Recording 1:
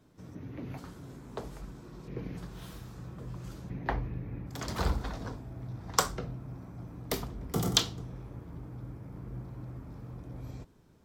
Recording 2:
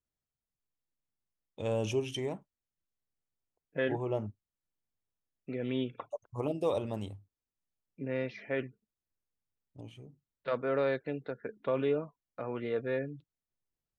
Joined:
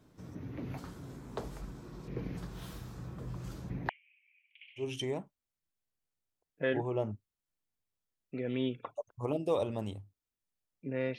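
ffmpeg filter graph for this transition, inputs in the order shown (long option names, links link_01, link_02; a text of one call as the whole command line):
ffmpeg -i cue0.wav -i cue1.wav -filter_complex "[0:a]asettb=1/sr,asplit=3[link_01][link_02][link_03];[link_01]atrim=end=3.894[link_04];[link_02]atrim=start=3.89:end=4.9,asetpts=PTS-STARTPTS,afade=type=in:duration=0.004:curve=qsin,afade=type=out:start_time=1.006:duration=0.004:curve=qsin,asuperpass=centerf=2600:order=8:qfactor=3[link_05];[link_03]atrim=start=4.896[link_06];[link_04][link_05]acrossfade=duration=0.004:curve1=hsin:curve2=qsin[link_07];[link_07][link_06]acrossfade=duration=0.004:curve1=qsin:curve2=hsin,apad=whole_dur=11.18,atrim=end=11.18,atrim=end=4.9,asetpts=PTS-STARTPTS[link_08];[1:a]atrim=start=1.91:end=8.33,asetpts=PTS-STARTPTS[link_09];[link_08][link_09]acrossfade=duration=0.14:curve1=tri:curve2=tri" out.wav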